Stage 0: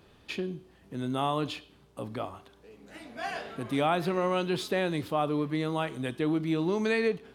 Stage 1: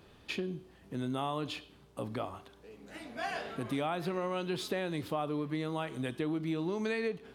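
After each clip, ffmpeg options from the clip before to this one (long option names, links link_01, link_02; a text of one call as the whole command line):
ffmpeg -i in.wav -af "acompressor=threshold=-32dB:ratio=3" out.wav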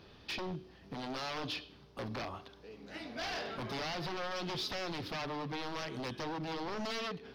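ffmpeg -i in.wav -af "aeval=exprs='0.0178*(abs(mod(val(0)/0.0178+3,4)-2)-1)':channel_layout=same,highshelf=frequency=6400:width_type=q:width=3:gain=-7.5,volume=1dB" out.wav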